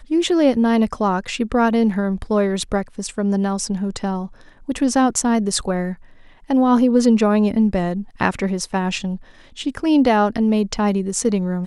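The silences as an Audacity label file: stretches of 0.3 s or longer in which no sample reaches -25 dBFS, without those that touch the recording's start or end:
4.260000	4.690000	silence
5.930000	6.500000	silence
9.160000	9.590000	silence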